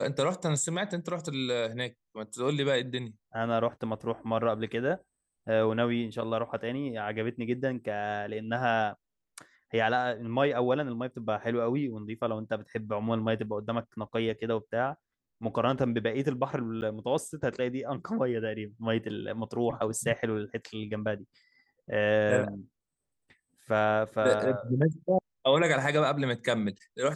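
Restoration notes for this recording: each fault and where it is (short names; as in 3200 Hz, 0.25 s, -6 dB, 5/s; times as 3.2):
16.81–16.82 gap 9.7 ms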